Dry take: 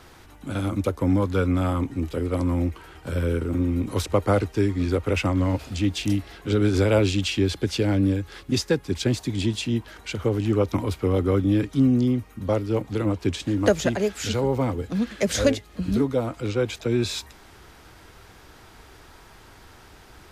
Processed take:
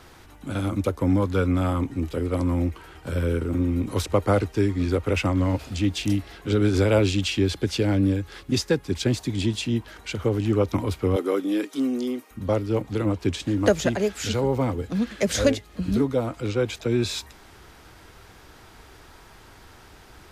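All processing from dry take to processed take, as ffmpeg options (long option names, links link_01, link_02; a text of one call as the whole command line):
ffmpeg -i in.wav -filter_complex "[0:a]asettb=1/sr,asplit=3[link_01][link_02][link_03];[link_01]atrim=end=11.164[link_04];[link_02]atrim=start=11.16:end=12.31,asetpts=PTS-STARTPTS,afade=type=in:duration=0.004:curve=qsin,afade=type=out:start_time=1.146:duration=0.004:curve=qsin,highpass=frequency=290:width=0.5412,highpass=frequency=290:width=1.3066,highshelf=frequency=6400:gain=8[link_05];[link_03]atrim=start=12.306[link_06];[link_04][link_05]acrossfade=duration=0.004:curve1=hsin:curve2=qsin[link_07];[link_07][link_06]acrossfade=duration=0.004:curve1=qsin:curve2=hsin" out.wav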